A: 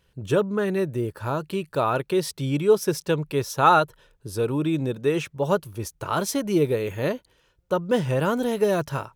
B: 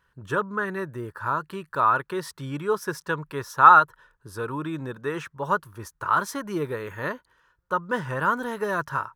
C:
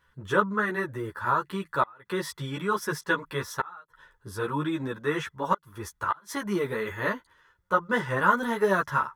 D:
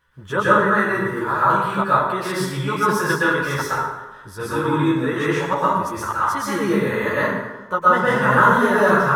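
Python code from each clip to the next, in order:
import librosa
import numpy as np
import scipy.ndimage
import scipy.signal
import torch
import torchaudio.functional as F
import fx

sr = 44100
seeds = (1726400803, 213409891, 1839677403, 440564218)

y1 = fx.band_shelf(x, sr, hz=1300.0, db=14.0, octaves=1.2)
y1 = F.gain(torch.from_numpy(y1), -7.5).numpy()
y2 = fx.gate_flip(y1, sr, shuts_db=-11.0, range_db=-33)
y2 = fx.small_body(y2, sr, hz=(2000.0, 3400.0), ring_ms=45, db=13)
y2 = fx.ensemble(y2, sr)
y2 = F.gain(torch.from_numpy(y2), 4.5).numpy()
y3 = fx.rev_plate(y2, sr, seeds[0], rt60_s=1.1, hf_ratio=0.6, predelay_ms=105, drr_db=-8.0)
y3 = F.gain(torch.from_numpy(y3), 1.0).numpy()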